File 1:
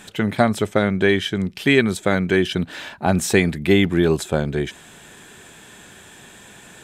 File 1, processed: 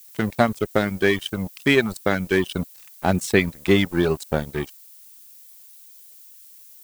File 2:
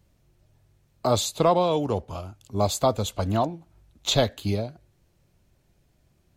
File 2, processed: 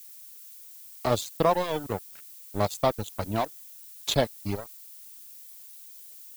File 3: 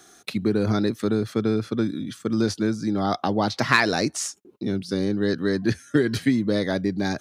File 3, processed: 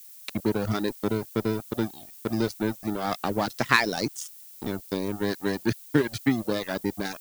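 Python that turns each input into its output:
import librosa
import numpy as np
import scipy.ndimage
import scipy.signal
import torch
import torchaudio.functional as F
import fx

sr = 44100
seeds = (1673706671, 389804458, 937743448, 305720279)

y = np.sign(x) * np.maximum(np.abs(x) - 10.0 ** (-28.5 / 20.0), 0.0)
y = fx.dereverb_blind(y, sr, rt60_s=0.82)
y = fx.dmg_noise_colour(y, sr, seeds[0], colour='violet', level_db=-47.0)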